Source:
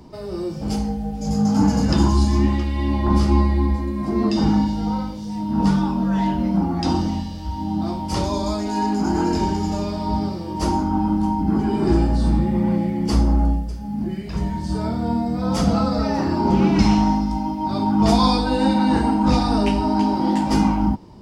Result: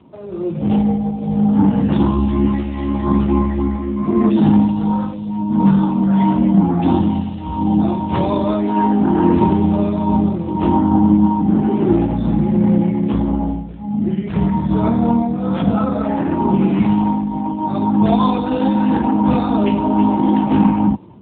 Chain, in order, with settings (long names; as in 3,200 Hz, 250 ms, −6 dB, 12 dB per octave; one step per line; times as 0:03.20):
0:09.24–0:11.27: low-shelf EQ 400 Hz +4 dB
automatic gain control gain up to 14.5 dB
level −1 dB
AMR narrowband 7.4 kbit/s 8,000 Hz